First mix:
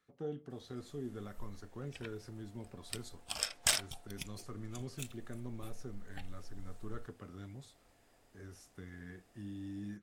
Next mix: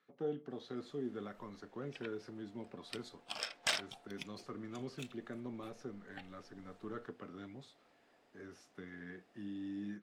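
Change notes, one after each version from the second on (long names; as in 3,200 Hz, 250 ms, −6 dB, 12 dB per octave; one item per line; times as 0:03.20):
speech +3.0 dB
master: add three-way crossover with the lows and the highs turned down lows −23 dB, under 160 Hz, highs −16 dB, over 5,000 Hz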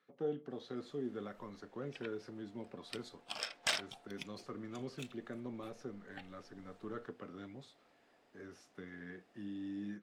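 speech: add parametric band 520 Hz +3.5 dB 0.26 octaves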